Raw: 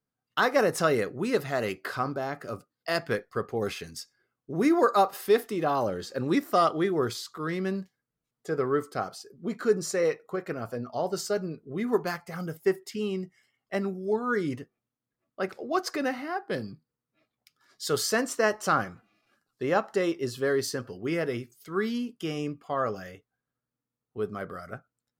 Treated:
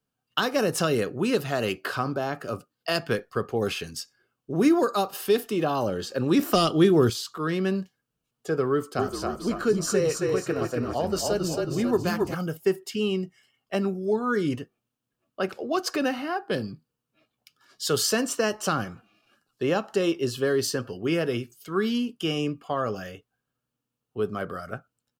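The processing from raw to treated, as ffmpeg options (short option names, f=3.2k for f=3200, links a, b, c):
-filter_complex "[0:a]asettb=1/sr,asplit=3[a][b][c];[a]atrim=end=6.394[d];[b]atrim=start=6.39:end=7.1,asetpts=PTS-STARTPTS,afade=t=in:d=0.004:c=qsin,afade=t=out:st=0.706:d=0.004:c=qsin,acontrast=87[e];[c]atrim=start=7.096[f];[d][e]acrossfade=d=0.004:c1=hsin:c2=qsin[g];[g][f]acrossfade=d=0.004:c1=qsin:c2=hsin,asplit=3[h][i][j];[h]afade=t=out:st=8.97:d=0.02[k];[i]asplit=7[l][m][n][o][p][q][r];[m]adelay=270,afreqshift=-32,volume=-4.5dB[s];[n]adelay=540,afreqshift=-64,volume=-11.4dB[t];[o]adelay=810,afreqshift=-96,volume=-18.4dB[u];[p]adelay=1080,afreqshift=-128,volume=-25.3dB[v];[q]adelay=1350,afreqshift=-160,volume=-32.2dB[w];[r]adelay=1620,afreqshift=-192,volume=-39.2dB[x];[l][s][t][u][v][w][x]amix=inputs=7:normalize=0,afade=t=in:st=8.97:d=0.02,afade=t=out:st=12.33:d=0.02[y];[j]afade=t=in:st=12.33:d=0.02[z];[k][y][z]amix=inputs=3:normalize=0,equalizer=f=2.9k:t=o:w=0.22:g=7.5,bandreject=f=2k:w=7.9,acrossover=split=340|3000[aa][ab][ac];[ab]acompressor=threshold=-29dB:ratio=6[ad];[aa][ad][ac]amix=inputs=3:normalize=0,volume=4.5dB"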